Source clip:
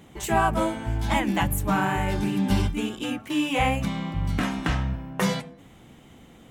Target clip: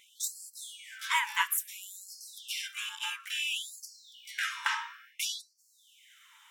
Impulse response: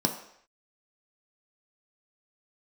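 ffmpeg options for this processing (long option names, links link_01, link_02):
-filter_complex "[0:a]asettb=1/sr,asplit=3[link_01][link_02][link_03];[link_01]atrim=end=1.574[link_04];[link_02]atrim=start=1.57:end=1.97,asetpts=PTS-STARTPTS,afade=type=in:duration=0.004:curve=qsin,afade=type=out:start_time=0.396:duration=0.004:curve=qsin,aderivative[link_05];[link_03]atrim=start=1.966[link_06];[link_04][link_05]acrossfade=duration=0.004:curve1=hsin:curve2=qsin[link_07];[link_07][link_06]acrossfade=duration=0.004:curve1=qsin:curve2=hsin,asplit=2[link_08][link_09];[1:a]atrim=start_sample=2205[link_10];[link_09][link_10]afir=irnorm=-1:irlink=0,volume=-19dB[link_11];[link_08][link_11]amix=inputs=2:normalize=0,afftfilt=real='re*gte(b*sr/1024,830*pow(4300/830,0.5+0.5*sin(2*PI*0.58*pts/sr)))':imag='im*gte(b*sr/1024,830*pow(4300/830,0.5+0.5*sin(2*PI*0.58*pts/sr)))':win_size=1024:overlap=0.75"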